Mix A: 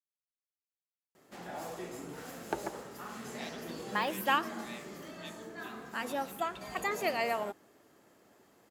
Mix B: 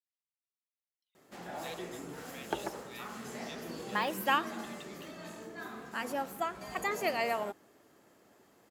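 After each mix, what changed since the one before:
speech: entry −1.75 s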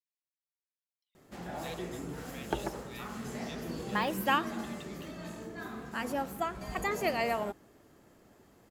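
master: remove high-pass filter 340 Hz 6 dB per octave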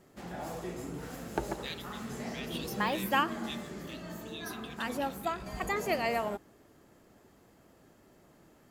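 speech: add spectral tilt +4 dB per octave
background: entry −1.15 s

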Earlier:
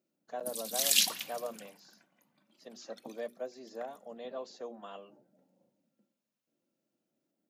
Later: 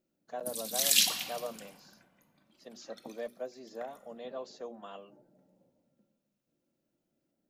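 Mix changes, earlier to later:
background: send +11.5 dB
master: remove high-pass filter 140 Hz 12 dB per octave

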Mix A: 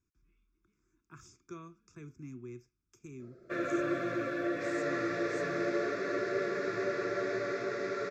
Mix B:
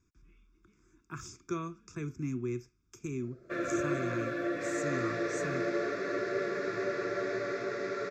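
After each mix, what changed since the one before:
speech +10.5 dB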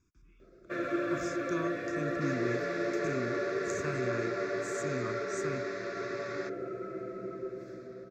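first sound: entry −2.80 s
second sound: entry −2.40 s

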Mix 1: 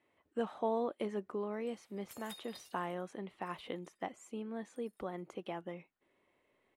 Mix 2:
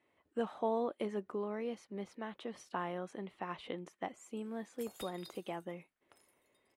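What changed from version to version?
background: entry +2.70 s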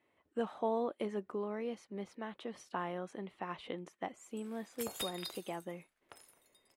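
background +10.0 dB

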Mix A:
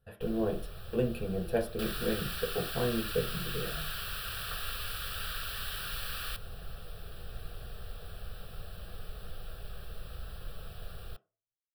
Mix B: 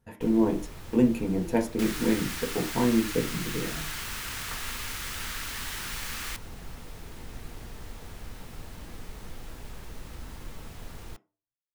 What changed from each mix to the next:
master: remove phaser with its sweep stopped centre 1,400 Hz, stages 8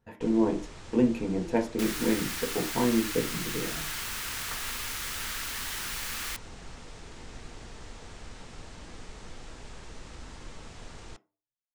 speech: add parametric band 11,000 Hz −15 dB 1.2 octaves
first sound: add Butterworth low-pass 8,400 Hz 36 dB per octave
master: add bass and treble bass −4 dB, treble +2 dB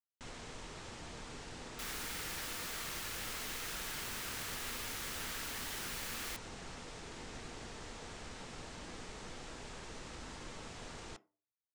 speech: muted
second sound −7.5 dB
master: add low-shelf EQ 92 Hz −9.5 dB

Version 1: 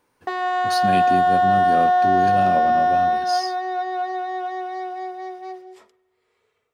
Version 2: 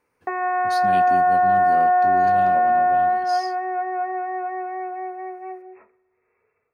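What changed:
speech −7.0 dB
background: add linear-phase brick-wall low-pass 2,700 Hz

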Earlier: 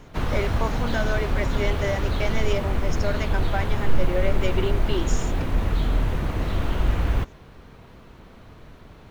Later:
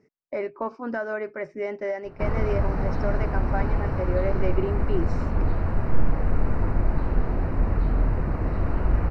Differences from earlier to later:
background: entry +2.05 s
master: add moving average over 13 samples

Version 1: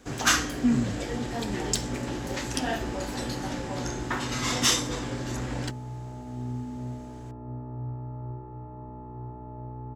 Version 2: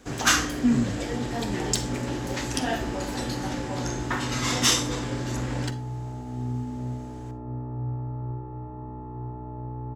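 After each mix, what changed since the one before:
reverb: on, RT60 0.35 s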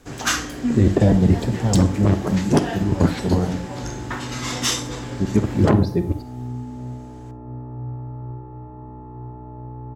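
speech: unmuted
first sound: send −8.5 dB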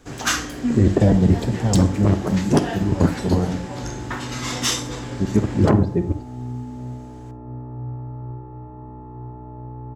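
speech: add low-pass filter 2,200 Hz 12 dB per octave

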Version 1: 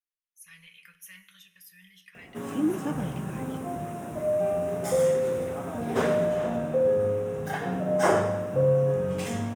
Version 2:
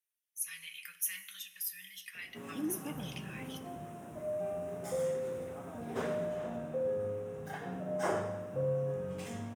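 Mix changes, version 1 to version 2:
speech: add spectral tilt +4 dB per octave
background −11.0 dB

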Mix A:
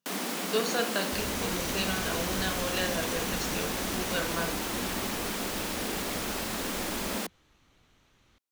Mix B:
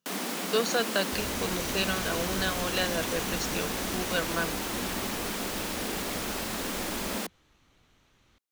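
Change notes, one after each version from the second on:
speech +5.0 dB
reverb: off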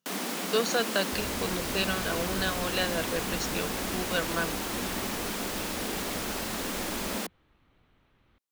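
second sound: add high-frequency loss of the air 300 metres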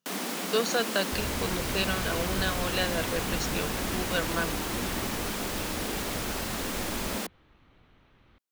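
second sound +5.5 dB

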